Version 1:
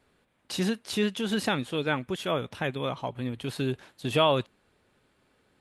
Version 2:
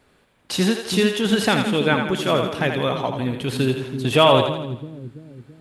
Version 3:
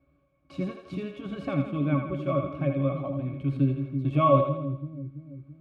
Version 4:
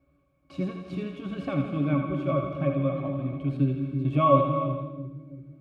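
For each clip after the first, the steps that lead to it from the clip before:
two-band feedback delay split 340 Hz, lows 333 ms, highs 82 ms, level -6 dB; trim +8 dB
pitch-class resonator C#, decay 0.13 s; trim +2.5 dB
gated-style reverb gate 470 ms flat, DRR 7.5 dB

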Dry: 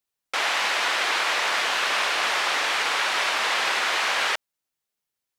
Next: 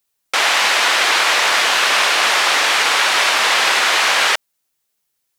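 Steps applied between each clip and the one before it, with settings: treble shelf 5.2 kHz +6 dB; trim +8 dB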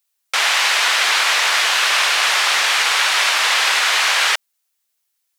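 high-pass 1.1 kHz 6 dB/octave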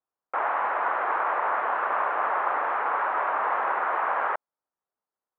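inverse Chebyshev low-pass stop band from 5.1 kHz, stop band 70 dB

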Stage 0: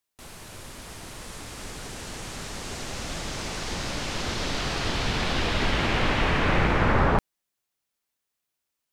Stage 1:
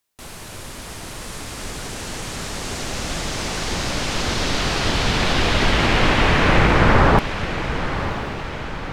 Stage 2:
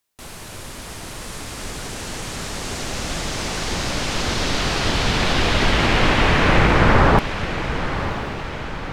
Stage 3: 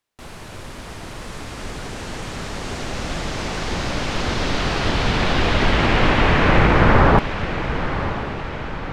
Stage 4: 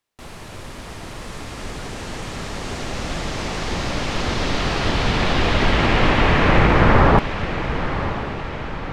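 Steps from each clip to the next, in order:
echo that smears into a reverb 1007 ms, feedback 54%, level -10 dB; trim +7 dB
no audible change
low-pass 2.9 kHz 6 dB/octave; trim +1 dB
band-stop 1.5 kHz, Q 29

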